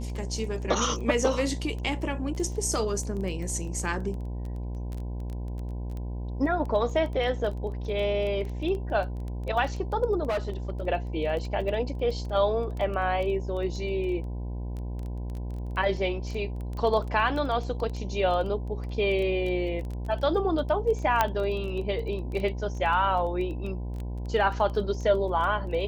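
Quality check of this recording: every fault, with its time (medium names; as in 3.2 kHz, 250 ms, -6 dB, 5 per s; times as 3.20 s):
buzz 60 Hz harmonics 17 -33 dBFS
crackle 13 per s -32 dBFS
10.28–10.70 s: clipped -24 dBFS
21.21 s: pop -8 dBFS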